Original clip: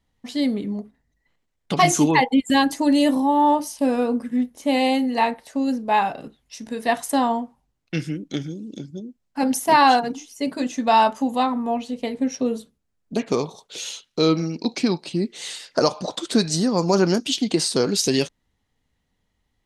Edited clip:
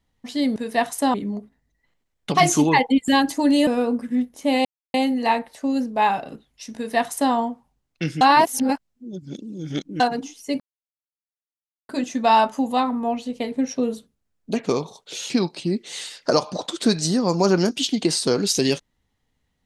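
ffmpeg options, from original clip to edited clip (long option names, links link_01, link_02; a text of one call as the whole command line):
ffmpeg -i in.wav -filter_complex "[0:a]asplit=9[link_01][link_02][link_03][link_04][link_05][link_06][link_07][link_08][link_09];[link_01]atrim=end=0.562[link_10];[link_02]atrim=start=6.668:end=7.252[link_11];[link_03]atrim=start=0.558:end=3.092[link_12];[link_04]atrim=start=3.878:end=4.86,asetpts=PTS-STARTPTS,afade=type=out:start_time=0.978:duration=0.004:curve=hsin,apad=pad_dur=0.29[link_13];[link_05]atrim=start=4.86:end=8.132,asetpts=PTS-STARTPTS,afade=type=in:duration=0.004:curve=hsin[link_14];[link_06]atrim=start=8.128:end=9.922,asetpts=PTS-STARTPTS,areverse[link_15];[link_07]atrim=start=9.918:end=10.52,asetpts=PTS-STARTPTS,afade=type=out:start_time=0.598:duration=0.004:curve=hsin,apad=pad_dur=1.29[link_16];[link_08]atrim=start=10.52:end=13.932,asetpts=PTS-STARTPTS,afade=type=in:duration=0.004:curve=hsin[link_17];[link_09]atrim=start=14.788[link_18];[link_10][link_11]acrossfade=duration=0.004:curve1=hsin:curve2=hsin[link_19];[link_19][link_12]acrossfade=duration=0.004:curve1=hsin:curve2=hsin[link_20];[link_13][link_14]concat=n=2:v=0:a=1[link_21];[link_20][link_21]acrossfade=duration=0.004:curve1=hsin:curve2=hsin[link_22];[link_22][link_15]acrossfade=duration=0.004:curve1=hsin:curve2=hsin[link_23];[link_16][link_17]concat=n=2:v=0:a=1[link_24];[link_23][link_24]acrossfade=duration=0.004:curve1=hsin:curve2=hsin[link_25];[link_25][link_18]acrossfade=duration=0.004:curve1=hsin:curve2=hsin" out.wav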